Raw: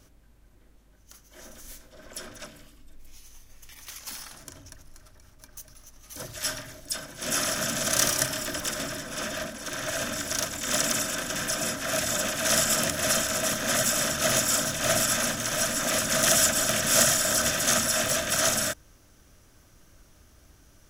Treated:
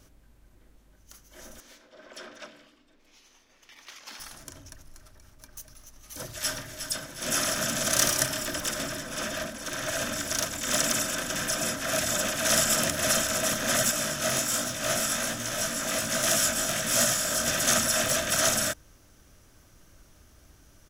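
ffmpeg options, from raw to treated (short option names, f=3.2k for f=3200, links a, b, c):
-filter_complex "[0:a]asettb=1/sr,asplit=3[a][b][c];[a]atrim=end=1.604[d];[b]atrim=start=1.6:end=4.2,asetpts=PTS-STARTPTS,afade=t=in:d=0.004:c=qsin,afade=t=out:st=2.596:d=0.004:c=qsin,acrossover=split=220 5400:gain=0.0891 1 0.126[e][f][g];[e][f][g]amix=inputs=3:normalize=0[h];[c]atrim=start=4.196[i];[d][h]acrossfade=d=0.004:c1=hsin:c2=qsin[j];[j][i]acrossfade=d=0.004:c1=qsin:c2=hsin,asplit=2[k][l];[l]afade=t=in:st=6.14:d=0.01,afade=t=out:st=6.77:d=0.01,aecho=0:1:360|720|1080|1440|1800:0.398107|0.159243|0.0636971|0.0254789|0.0101915[m];[k][m]amix=inputs=2:normalize=0,asettb=1/sr,asplit=3[n][o][p];[n]atrim=end=13.914[q];[o]atrim=start=13.91:end=17.48,asetpts=PTS-STARTPTS,afade=t=in:d=0.004:c=qsin,afade=t=out:st=3.566:d=0.004:c=qsin,flanger=delay=16.5:depth=5.7:speed=1.3[r];[p]atrim=start=17.476[s];[q][r]acrossfade=d=0.004:c1=hsin:c2=qsin[t];[t][s]acrossfade=d=0.004:c1=qsin:c2=hsin"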